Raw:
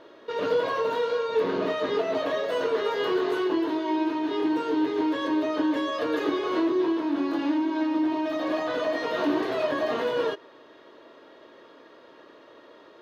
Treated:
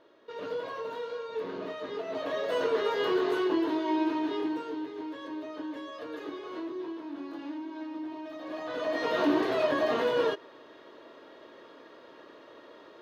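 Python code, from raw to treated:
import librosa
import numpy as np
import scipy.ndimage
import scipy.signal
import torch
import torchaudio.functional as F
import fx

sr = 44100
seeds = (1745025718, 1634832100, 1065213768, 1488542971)

y = fx.gain(x, sr, db=fx.line((1.97, -10.5), (2.53, -2.0), (4.2, -2.0), (4.9, -13.0), (8.42, -13.0), (9.07, -0.5)))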